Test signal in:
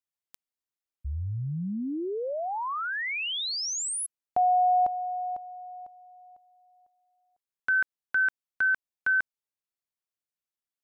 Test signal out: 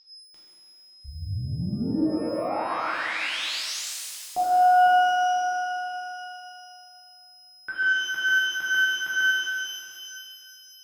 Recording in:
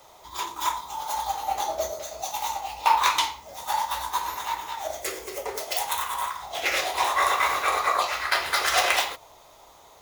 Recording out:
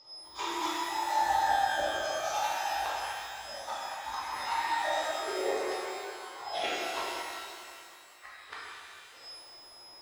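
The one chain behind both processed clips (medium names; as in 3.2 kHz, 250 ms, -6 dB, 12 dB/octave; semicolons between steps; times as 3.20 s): spectral noise reduction 10 dB; peaking EQ 340 Hz +13 dB 0.27 oct; whistle 5.1 kHz -43 dBFS; inverted gate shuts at -17 dBFS, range -42 dB; distance through air 83 m; pitch-shifted reverb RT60 2.4 s, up +12 st, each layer -8 dB, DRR -8.5 dB; trim -6.5 dB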